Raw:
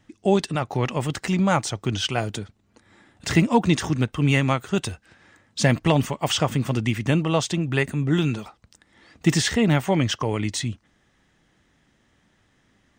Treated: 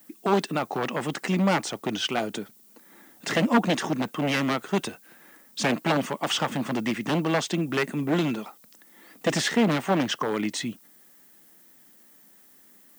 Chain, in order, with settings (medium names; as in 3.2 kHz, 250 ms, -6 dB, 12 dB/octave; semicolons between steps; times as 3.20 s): one-sided wavefolder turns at -16.5 dBFS; high-pass 190 Hz 24 dB/octave; treble shelf 3.2 kHz -7 dB; added noise violet -57 dBFS; trim +1.5 dB